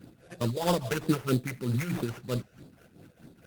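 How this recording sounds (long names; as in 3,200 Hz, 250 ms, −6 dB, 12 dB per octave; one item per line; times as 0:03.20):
tremolo triangle 4.7 Hz, depth 75%
phaser sweep stages 6, 3.1 Hz, lowest notch 230–1,900 Hz
aliases and images of a low sample rate 4,200 Hz, jitter 20%
Opus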